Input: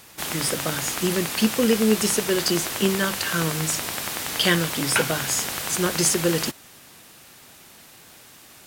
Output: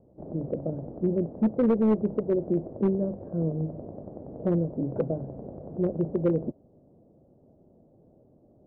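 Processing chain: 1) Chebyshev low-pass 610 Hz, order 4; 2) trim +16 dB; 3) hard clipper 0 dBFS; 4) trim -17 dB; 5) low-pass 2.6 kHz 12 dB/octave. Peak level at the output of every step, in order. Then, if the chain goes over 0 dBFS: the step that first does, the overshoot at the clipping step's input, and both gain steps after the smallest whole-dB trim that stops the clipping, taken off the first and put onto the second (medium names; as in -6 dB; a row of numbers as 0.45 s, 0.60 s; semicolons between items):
-10.0 dBFS, +6.0 dBFS, 0.0 dBFS, -17.0 dBFS, -17.0 dBFS; step 2, 6.0 dB; step 2 +10 dB, step 4 -11 dB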